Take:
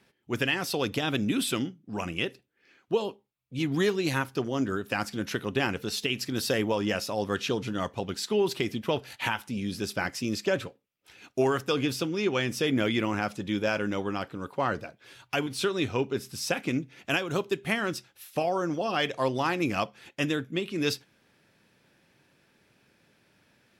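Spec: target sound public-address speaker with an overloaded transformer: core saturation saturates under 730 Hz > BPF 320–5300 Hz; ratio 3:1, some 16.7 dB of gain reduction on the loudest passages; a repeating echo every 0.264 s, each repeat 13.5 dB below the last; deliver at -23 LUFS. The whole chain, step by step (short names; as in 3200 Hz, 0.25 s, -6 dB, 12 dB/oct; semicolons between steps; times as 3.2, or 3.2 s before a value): compressor 3:1, threshold -45 dBFS; feedback echo 0.264 s, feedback 21%, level -13.5 dB; core saturation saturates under 730 Hz; BPF 320–5300 Hz; gain +23.5 dB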